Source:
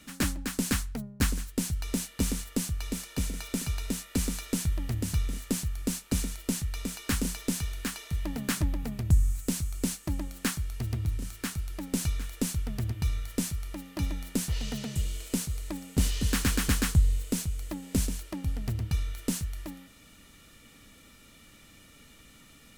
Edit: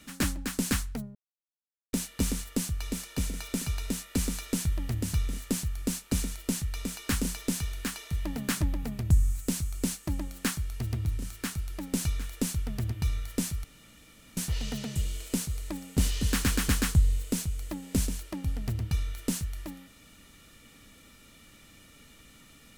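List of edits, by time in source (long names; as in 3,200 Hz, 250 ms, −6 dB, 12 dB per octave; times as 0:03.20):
0:01.15–0:01.93: silence
0:13.64–0:14.37: fill with room tone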